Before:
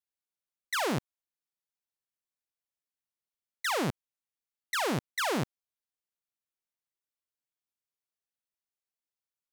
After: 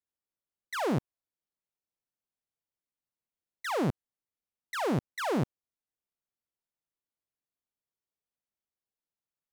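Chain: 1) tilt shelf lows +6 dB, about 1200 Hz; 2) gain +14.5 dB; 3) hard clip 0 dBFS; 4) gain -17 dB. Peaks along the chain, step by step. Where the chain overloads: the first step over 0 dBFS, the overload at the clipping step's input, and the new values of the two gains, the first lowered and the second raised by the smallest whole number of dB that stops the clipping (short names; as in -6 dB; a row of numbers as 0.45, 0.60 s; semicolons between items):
-18.5, -4.0, -4.0, -21.0 dBFS; no overload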